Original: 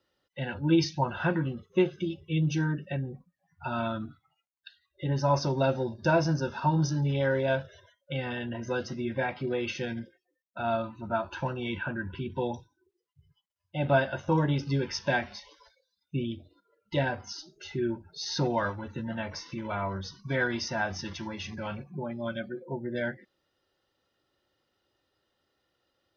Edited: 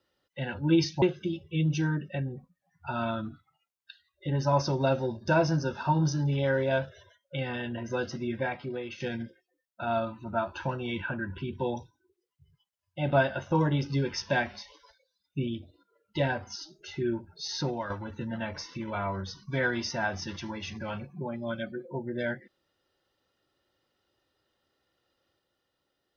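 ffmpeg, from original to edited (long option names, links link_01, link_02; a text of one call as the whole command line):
ffmpeg -i in.wav -filter_complex "[0:a]asplit=4[link_01][link_02][link_03][link_04];[link_01]atrim=end=1.022[link_05];[link_02]atrim=start=1.788:end=9.77,asetpts=PTS-STARTPTS,afade=type=out:start_time=7.302:duration=0.68:silence=0.316228[link_06];[link_03]atrim=start=9.77:end=18.67,asetpts=PTS-STARTPTS,afade=type=in:duration=0.004:curve=hsin:silence=0.316228,afade=type=out:start_time=8.47:duration=0.43:silence=0.334965[link_07];[link_04]atrim=start=18.67,asetpts=PTS-STARTPTS,afade=type=in:duration=0.004:curve=hsin:silence=0.334965[link_08];[link_06][link_07][link_08]concat=n=3:v=0:a=1[link_09];[link_05][link_09]acrossfade=duration=0.004:curve1=hsin:curve2=hsin" out.wav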